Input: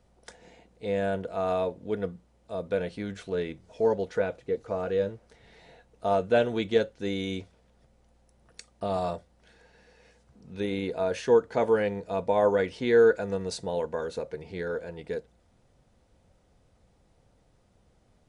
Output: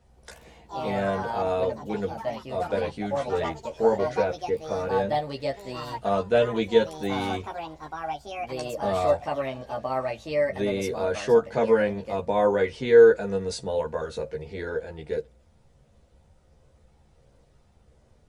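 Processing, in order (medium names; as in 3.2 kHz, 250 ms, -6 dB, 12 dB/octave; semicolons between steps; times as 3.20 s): ever faster or slower copies 91 ms, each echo +4 st, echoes 3, each echo -6 dB; chorus voices 6, 0.24 Hz, delay 14 ms, depth 1.3 ms; trim +5 dB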